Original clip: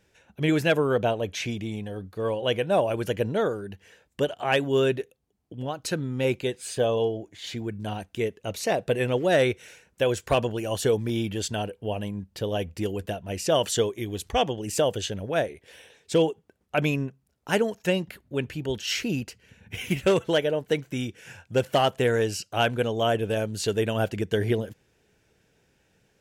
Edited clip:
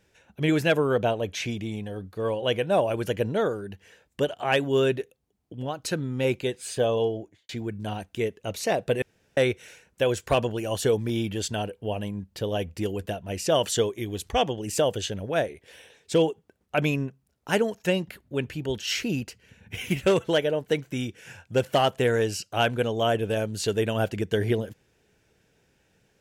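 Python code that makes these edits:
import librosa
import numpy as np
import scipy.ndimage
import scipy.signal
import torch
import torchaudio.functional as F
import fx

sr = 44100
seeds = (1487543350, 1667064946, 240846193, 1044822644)

y = fx.studio_fade_out(x, sr, start_s=7.18, length_s=0.31)
y = fx.edit(y, sr, fx.room_tone_fill(start_s=9.02, length_s=0.35), tone=tone)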